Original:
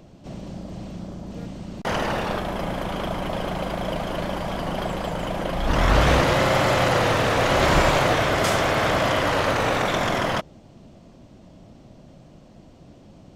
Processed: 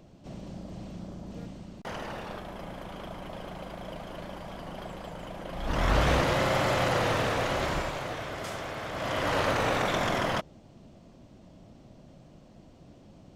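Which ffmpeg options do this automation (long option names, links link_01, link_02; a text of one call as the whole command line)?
ffmpeg -i in.wav -af "volume=11dB,afade=type=out:start_time=1.37:duration=0.55:silence=0.446684,afade=type=in:start_time=5.45:duration=0.43:silence=0.473151,afade=type=out:start_time=7.2:duration=0.72:silence=0.354813,afade=type=in:start_time=8.92:duration=0.45:silence=0.298538" out.wav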